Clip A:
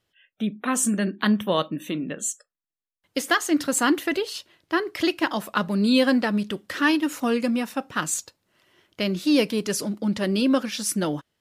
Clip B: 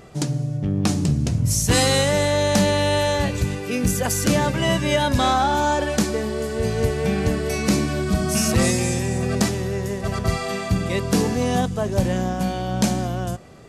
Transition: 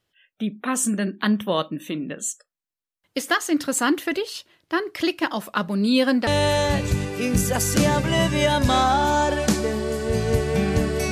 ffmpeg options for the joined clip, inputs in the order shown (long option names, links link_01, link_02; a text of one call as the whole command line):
ffmpeg -i cue0.wav -i cue1.wav -filter_complex "[0:a]apad=whole_dur=11.11,atrim=end=11.11,atrim=end=6.272[link_01];[1:a]atrim=start=2.768:end=7.61[link_02];[link_01][link_02]acrossfade=duration=0.004:curve1=hsin:curve2=hsin" out.wav